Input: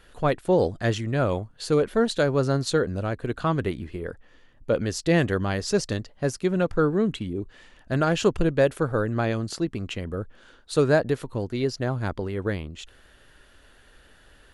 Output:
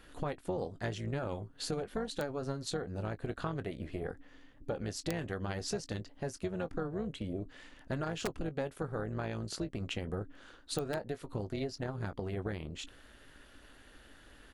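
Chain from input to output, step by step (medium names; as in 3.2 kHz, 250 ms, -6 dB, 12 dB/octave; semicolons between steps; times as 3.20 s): doubling 19 ms -13 dB; integer overflow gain 9.5 dB; compression 6:1, threshold -31 dBFS, peak gain reduction 15.5 dB; AM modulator 280 Hz, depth 50%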